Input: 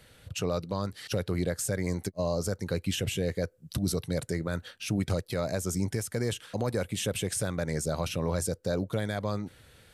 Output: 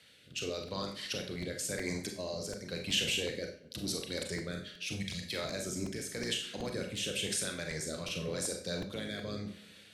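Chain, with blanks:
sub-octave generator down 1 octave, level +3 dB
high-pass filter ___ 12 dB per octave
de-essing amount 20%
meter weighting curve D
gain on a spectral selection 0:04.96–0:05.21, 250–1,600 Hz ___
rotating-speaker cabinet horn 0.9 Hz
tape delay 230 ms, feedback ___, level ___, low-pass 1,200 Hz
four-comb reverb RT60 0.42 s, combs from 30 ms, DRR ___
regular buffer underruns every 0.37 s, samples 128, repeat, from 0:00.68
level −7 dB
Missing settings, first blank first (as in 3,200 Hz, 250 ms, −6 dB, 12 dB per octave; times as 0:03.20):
92 Hz, −18 dB, 64%, −21 dB, 3 dB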